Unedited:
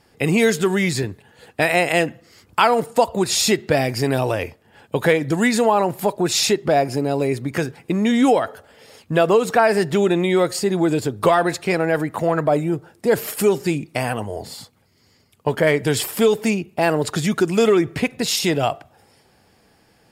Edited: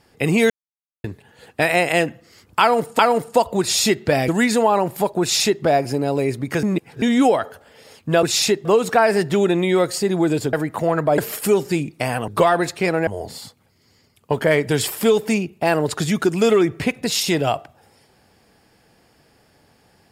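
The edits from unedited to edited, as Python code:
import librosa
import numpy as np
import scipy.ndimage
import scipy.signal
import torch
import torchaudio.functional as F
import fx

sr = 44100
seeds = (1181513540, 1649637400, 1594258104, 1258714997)

y = fx.edit(x, sr, fx.silence(start_s=0.5, length_s=0.54),
    fx.repeat(start_s=2.61, length_s=0.38, count=2),
    fx.cut(start_s=3.9, length_s=1.41),
    fx.duplicate(start_s=6.24, length_s=0.42, to_s=9.26),
    fx.reverse_span(start_s=7.66, length_s=0.39),
    fx.move(start_s=11.14, length_s=0.79, to_s=14.23),
    fx.cut(start_s=12.58, length_s=0.55), tone=tone)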